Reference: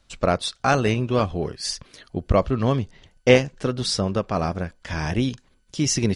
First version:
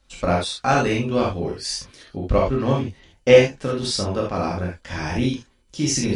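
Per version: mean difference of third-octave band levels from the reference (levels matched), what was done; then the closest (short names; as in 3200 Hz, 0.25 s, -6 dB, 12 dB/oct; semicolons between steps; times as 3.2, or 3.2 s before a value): 4.0 dB: non-linear reverb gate 0.1 s flat, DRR -3 dB; gain -3.5 dB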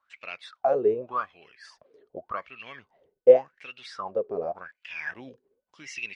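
13.5 dB: wah 0.87 Hz 400–2700 Hz, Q 13; gain +8.5 dB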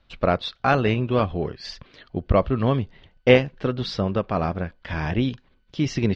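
2.5 dB: LPF 3900 Hz 24 dB/oct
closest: third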